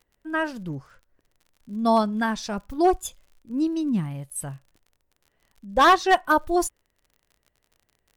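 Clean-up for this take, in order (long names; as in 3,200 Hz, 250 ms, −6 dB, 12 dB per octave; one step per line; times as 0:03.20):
clipped peaks rebuilt −11 dBFS
click removal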